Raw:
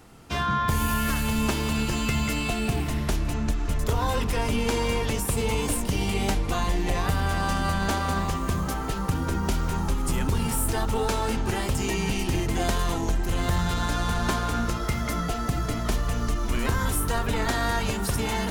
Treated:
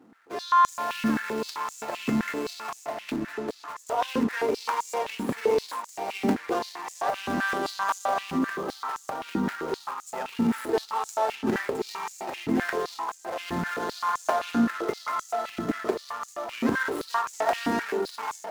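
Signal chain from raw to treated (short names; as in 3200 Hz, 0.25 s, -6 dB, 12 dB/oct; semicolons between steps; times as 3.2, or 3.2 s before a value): median filter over 15 samples; AGC gain up to 6.5 dB; stepped high-pass 7.7 Hz 250–6900 Hz; gain -7 dB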